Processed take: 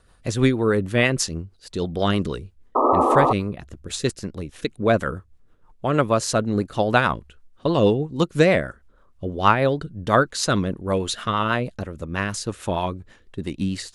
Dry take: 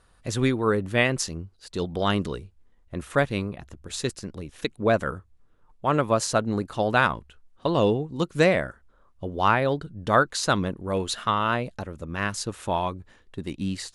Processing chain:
rotating-speaker cabinet horn 6.3 Hz
sound drawn into the spectrogram noise, 0:02.75–0:03.33, 240–1,300 Hz −23 dBFS
level +5.5 dB

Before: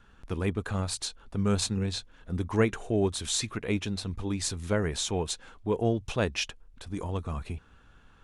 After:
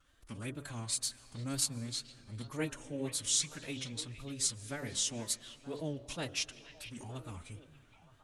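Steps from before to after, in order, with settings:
first-order pre-emphasis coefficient 0.8
hum removal 52.29 Hz, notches 27
tape wow and flutter 130 cents
phase-vocoder pitch shift with formants kept +4.5 semitones
echo through a band-pass that steps 463 ms, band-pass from 2,500 Hz, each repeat −1.4 octaves, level −10 dB
on a send at −19.5 dB: convolution reverb RT60 3.9 s, pre-delay 95 ms
on the sum: level +2 dB

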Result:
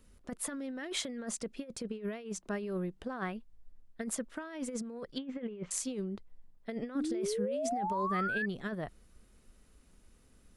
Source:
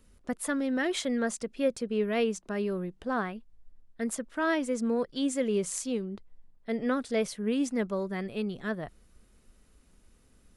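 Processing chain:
0:05.18–0:05.71: low-pass filter 2,800 Hz 24 dB per octave
compressor whose output falls as the input rises −32 dBFS, ratio −0.5
0:06.95–0:08.46: sound drawn into the spectrogram rise 270–1,800 Hz −30 dBFS
level −4.5 dB

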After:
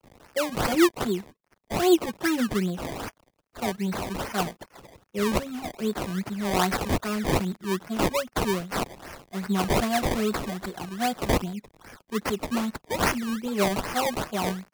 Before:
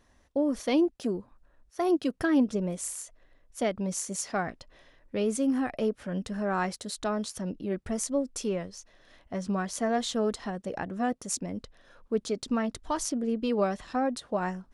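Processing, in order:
spike at every zero crossing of −21 dBFS
high-pass filter 130 Hz 24 dB per octave
noise gate −39 dBFS, range −11 dB
0:02.74–0:05.21: low-pass filter 6,500 Hz 12 dB per octave
noise reduction from a noise print of the clip's start 15 dB
comb filter 5.4 ms, depth 82%
sample-and-hold swept by an LFO 22×, swing 100% 2.5 Hz
multiband upward and downward expander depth 40%

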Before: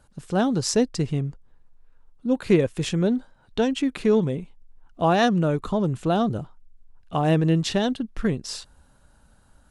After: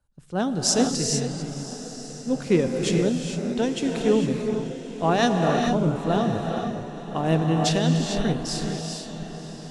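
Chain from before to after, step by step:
dynamic equaliser 6,500 Hz, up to +5 dB, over −45 dBFS, Q 0.85
feedback delay with all-pass diffusion 1,027 ms, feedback 57%, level −9.5 dB
reverb whose tail is shaped and stops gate 480 ms rising, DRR 1.5 dB
multiband upward and downward expander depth 40%
level −3 dB

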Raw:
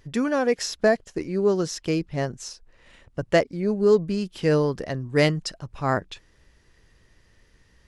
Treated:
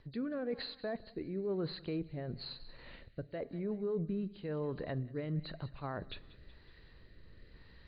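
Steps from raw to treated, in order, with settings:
hearing-aid frequency compression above 3,700 Hz 4 to 1
high-shelf EQ 4,300 Hz −10.5 dB
reversed playback
downward compressor 12 to 1, threshold −33 dBFS, peak gain reduction 19.5 dB
reversed playback
brickwall limiter −30.5 dBFS, peak gain reduction 8.5 dB
treble cut that deepens with the level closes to 2,100 Hz, closed at −34 dBFS
feedback echo with a high-pass in the loop 186 ms, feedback 49%, high-pass 920 Hz, level −17.5 dB
on a send at −19.5 dB: convolution reverb RT60 0.90 s, pre-delay 16 ms
on the sum: rotating-speaker cabinet horn 1 Hz
level +2.5 dB

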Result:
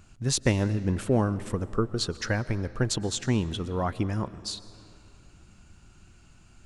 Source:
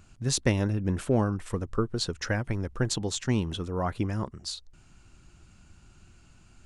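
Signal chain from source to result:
comb and all-pass reverb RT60 2.9 s, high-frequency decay 0.7×, pre-delay 85 ms, DRR 16.5 dB
level +1 dB

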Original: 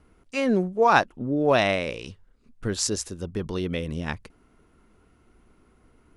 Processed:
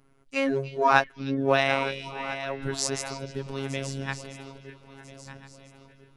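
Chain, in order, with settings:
feedback delay that plays each chunk backwards 672 ms, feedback 57%, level −11.5 dB
phases set to zero 136 Hz
on a send: echo through a band-pass that steps 303 ms, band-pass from 3,700 Hz, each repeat −0.7 octaves, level −9.5 dB
on the sum: dynamic equaliser 1,900 Hz, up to +4 dB, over −38 dBFS, Q 0.71
level −1.5 dB

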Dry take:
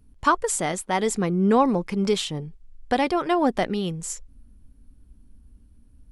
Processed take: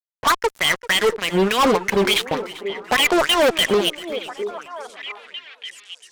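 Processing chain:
dynamic equaliser 810 Hz, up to −7 dB, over −36 dBFS, Q 2.1
LFO wah 3.4 Hz 480–3,200 Hz, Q 5.5
fuzz pedal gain 44 dB, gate −52 dBFS
echo through a band-pass that steps 683 ms, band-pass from 380 Hz, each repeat 1.4 octaves, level −8 dB
feedback echo with a swinging delay time 388 ms, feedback 39%, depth 125 cents, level −18 dB

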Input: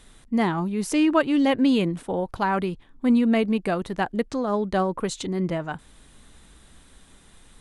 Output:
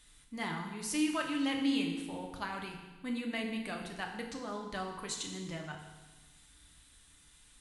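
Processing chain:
guitar amp tone stack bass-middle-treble 5-5-5
feedback delay network reverb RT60 1.2 s, low-frequency decay 1.2×, high-frequency decay 1×, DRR 1 dB

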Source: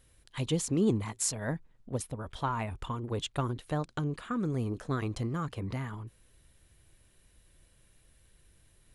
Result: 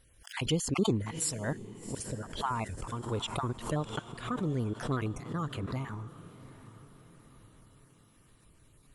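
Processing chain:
time-frequency cells dropped at random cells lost 28%
feedback delay with all-pass diffusion 738 ms, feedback 50%, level −16 dB
background raised ahead of every attack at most 120 dB per second

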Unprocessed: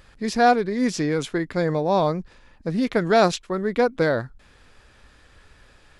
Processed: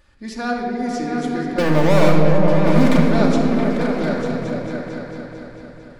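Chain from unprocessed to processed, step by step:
0:01.58–0:02.97: leveller curve on the samples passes 5
echo whose low-pass opens from repeat to repeat 224 ms, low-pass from 200 Hz, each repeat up 2 octaves, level 0 dB
rectangular room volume 3,900 cubic metres, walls mixed, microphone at 2.5 metres
level −7.5 dB

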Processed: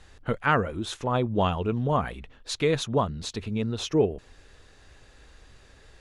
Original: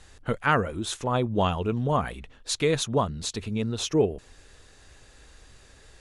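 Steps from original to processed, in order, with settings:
parametric band 9,000 Hz −8 dB 1.3 octaves

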